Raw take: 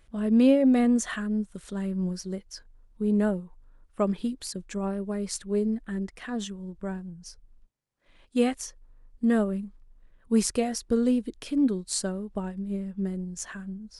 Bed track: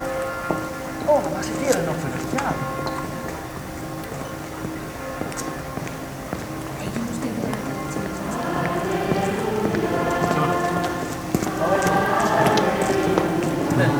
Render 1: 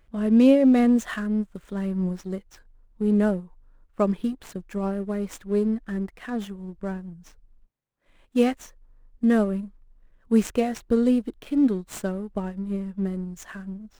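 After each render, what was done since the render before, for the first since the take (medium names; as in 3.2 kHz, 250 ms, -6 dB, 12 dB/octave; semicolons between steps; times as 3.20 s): median filter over 9 samples; in parallel at -6 dB: crossover distortion -40 dBFS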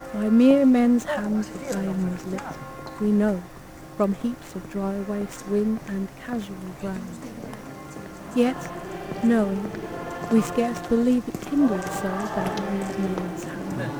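add bed track -11 dB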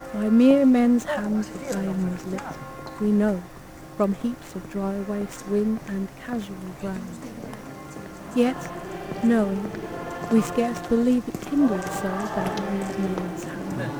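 no audible change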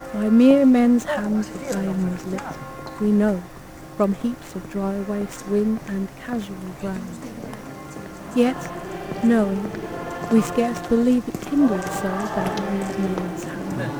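trim +2.5 dB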